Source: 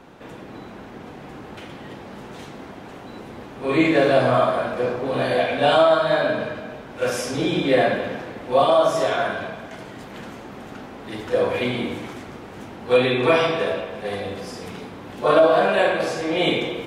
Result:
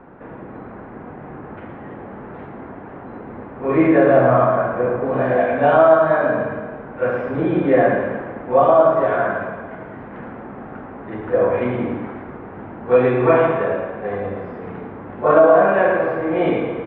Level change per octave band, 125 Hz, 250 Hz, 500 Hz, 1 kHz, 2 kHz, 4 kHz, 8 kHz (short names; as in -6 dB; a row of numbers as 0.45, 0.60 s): +4.0 dB, +4.0 dB, +4.0 dB, +3.5 dB, +0.5 dB, under -15 dB, under -40 dB